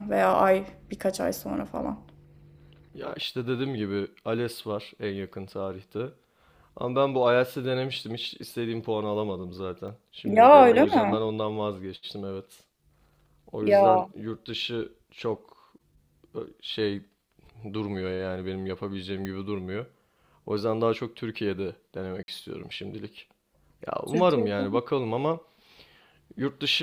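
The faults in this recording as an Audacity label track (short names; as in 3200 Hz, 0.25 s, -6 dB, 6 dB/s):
9.880000	9.880000	gap 3.2 ms
19.250000	19.250000	pop -20 dBFS
22.230000	22.280000	gap 51 ms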